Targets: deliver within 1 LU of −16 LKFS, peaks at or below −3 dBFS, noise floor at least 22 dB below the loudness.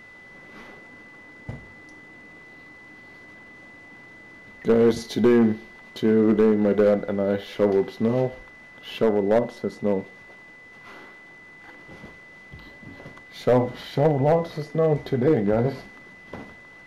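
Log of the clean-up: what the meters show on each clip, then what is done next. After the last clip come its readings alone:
share of clipped samples 0.5%; peaks flattened at −11.5 dBFS; interfering tone 2,000 Hz; level of the tone −45 dBFS; integrated loudness −22.0 LKFS; sample peak −11.5 dBFS; target loudness −16.0 LKFS
→ clipped peaks rebuilt −11.5 dBFS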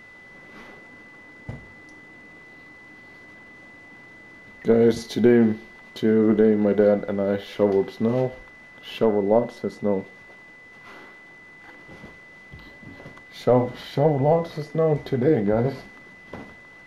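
share of clipped samples 0.0%; interfering tone 2,000 Hz; level of the tone −45 dBFS
→ notch filter 2,000 Hz, Q 30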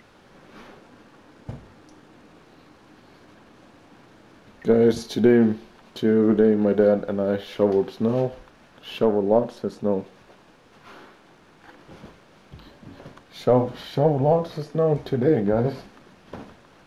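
interfering tone none found; integrated loudness −21.5 LKFS; sample peak −6.0 dBFS; target loudness −16.0 LKFS
→ level +5.5 dB
brickwall limiter −3 dBFS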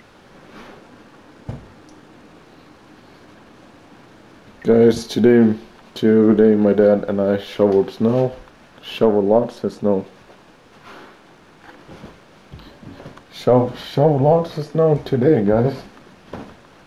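integrated loudness −16.5 LKFS; sample peak −3.0 dBFS; background noise floor −48 dBFS

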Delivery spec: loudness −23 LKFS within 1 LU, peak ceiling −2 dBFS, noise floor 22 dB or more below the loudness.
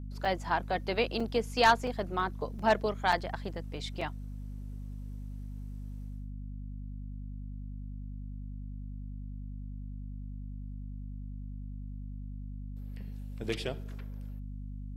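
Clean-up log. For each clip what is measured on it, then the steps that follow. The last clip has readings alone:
number of dropouts 7; longest dropout 4.2 ms; mains hum 50 Hz; hum harmonics up to 250 Hz; level of the hum −38 dBFS; integrated loudness −35.5 LKFS; sample peak −12.5 dBFS; target loudness −23.0 LKFS
→ repair the gap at 0:00.25/0:01.20/0:01.87/0:02.59/0:03.12/0:04.01/0:13.49, 4.2 ms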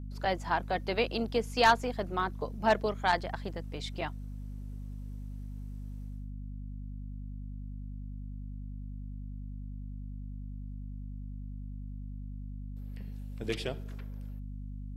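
number of dropouts 0; mains hum 50 Hz; hum harmonics up to 250 Hz; level of the hum −38 dBFS
→ hum removal 50 Hz, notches 5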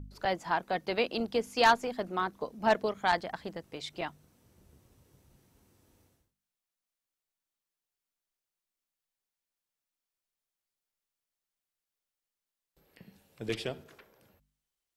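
mains hum none found; integrated loudness −31.5 LKFS; sample peak −12.5 dBFS; target loudness −23.0 LKFS
→ level +8.5 dB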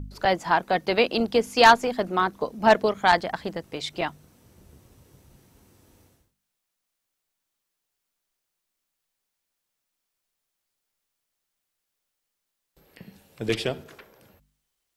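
integrated loudness −23.0 LKFS; sample peak −4.0 dBFS; background noise floor −82 dBFS

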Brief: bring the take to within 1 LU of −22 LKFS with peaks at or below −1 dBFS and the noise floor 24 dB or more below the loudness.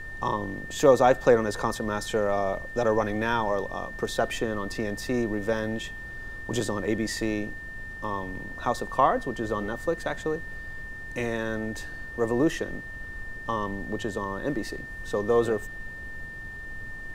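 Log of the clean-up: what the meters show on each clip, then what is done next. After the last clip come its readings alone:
interfering tone 1,800 Hz; level of the tone −38 dBFS; background noise floor −39 dBFS; target noise floor −52 dBFS; integrated loudness −28.0 LKFS; sample peak −6.0 dBFS; target loudness −22.0 LKFS
→ notch filter 1,800 Hz, Q 30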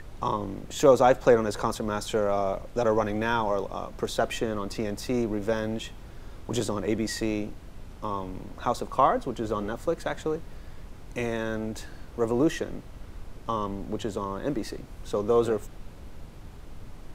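interfering tone none found; background noise floor −44 dBFS; target noise floor −52 dBFS
→ noise reduction from a noise print 8 dB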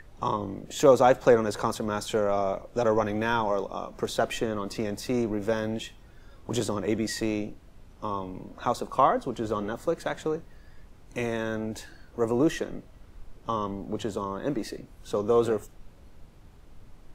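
background noise floor −52 dBFS; integrated loudness −28.0 LKFS; sample peak −6.0 dBFS; target loudness −22.0 LKFS
→ level +6 dB
brickwall limiter −1 dBFS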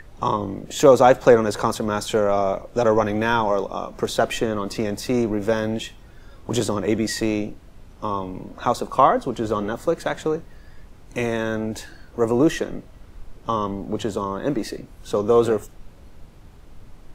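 integrated loudness −22.0 LKFS; sample peak −1.0 dBFS; background noise floor −46 dBFS

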